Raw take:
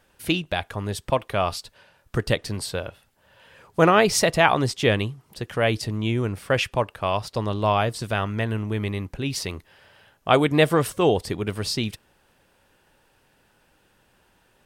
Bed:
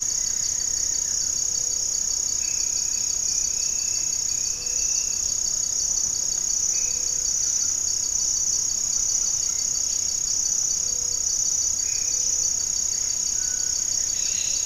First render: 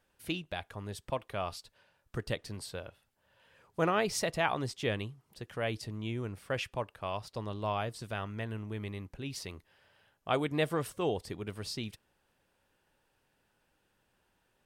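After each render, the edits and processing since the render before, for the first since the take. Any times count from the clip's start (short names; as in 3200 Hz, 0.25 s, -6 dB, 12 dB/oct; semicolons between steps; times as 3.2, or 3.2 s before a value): gain -12.5 dB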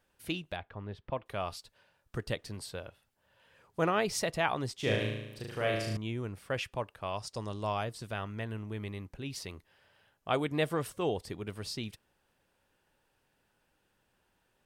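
0.56–1.26 air absorption 320 m; 4.75–5.97 flutter echo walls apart 6.3 m, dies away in 0.91 s; 7.17–7.84 band shelf 6800 Hz +10 dB 1.1 oct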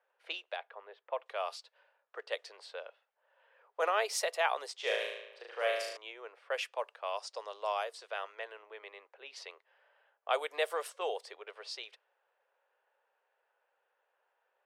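steep high-pass 460 Hz 48 dB/oct; low-pass opened by the level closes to 1800 Hz, open at -31.5 dBFS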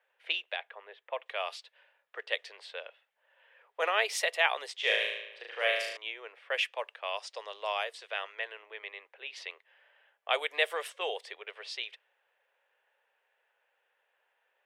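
band shelf 2500 Hz +8.5 dB 1.3 oct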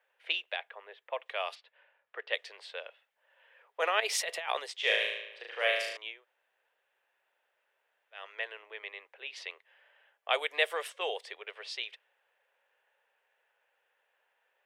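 1.54–2.32 LPF 2200 Hz -> 3800 Hz; 4–4.6 negative-ratio compressor -34 dBFS; 6.13–8.23 room tone, crossfade 0.24 s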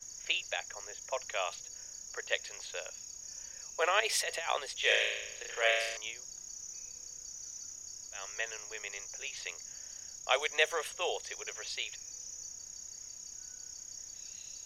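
add bed -22.5 dB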